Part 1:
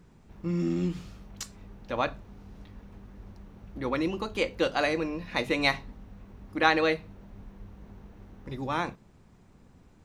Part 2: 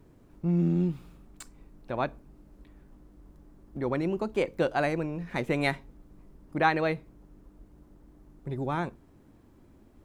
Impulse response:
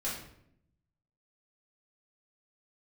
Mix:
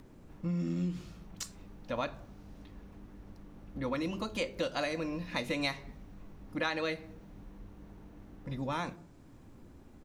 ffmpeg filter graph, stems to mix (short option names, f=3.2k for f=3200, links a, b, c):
-filter_complex "[0:a]adynamicequalizer=threshold=0.00562:dfrequency=3700:dqfactor=0.7:tfrequency=3700:tqfactor=0.7:attack=5:release=100:ratio=0.375:range=3:mode=boostabove:tftype=highshelf,volume=-3.5dB[a];[1:a]acompressor=mode=upward:threshold=-36dB:ratio=2.5,volume=-1,adelay=0.4,volume=-12dB,asplit=2[b][c];[c]volume=-9dB[d];[2:a]atrim=start_sample=2205[e];[d][e]afir=irnorm=-1:irlink=0[f];[a][b][f]amix=inputs=3:normalize=0,acompressor=threshold=-31dB:ratio=3"